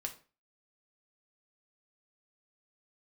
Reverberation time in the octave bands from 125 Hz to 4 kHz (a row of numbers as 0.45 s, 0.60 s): 0.35 s, 0.40 s, 0.35 s, 0.35 s, 0.35 s, 0.30 s